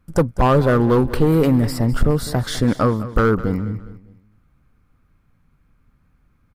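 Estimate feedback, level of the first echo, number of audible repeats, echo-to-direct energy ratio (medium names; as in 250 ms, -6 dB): 38%, -15.5 dB, 3, -15.0 dB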